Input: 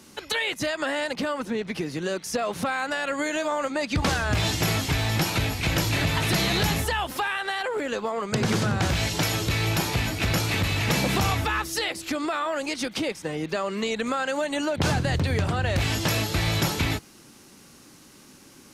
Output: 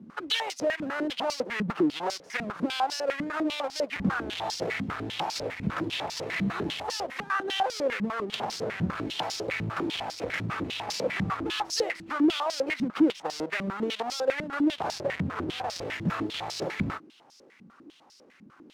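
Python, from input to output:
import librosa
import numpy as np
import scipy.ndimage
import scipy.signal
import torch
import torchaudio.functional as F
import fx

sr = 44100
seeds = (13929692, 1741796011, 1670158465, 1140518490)

y = fx.halfwave_hold(x, sr)
y = fx.rider(y, sr, range_db=10, speed_s=0.5)
y = fx.filter_held_bandpass(y, sr, hz=10.0, low_hz=200.0, high_hz=5100.0)
y = y * 10.0 ** (2.5 / 20.0)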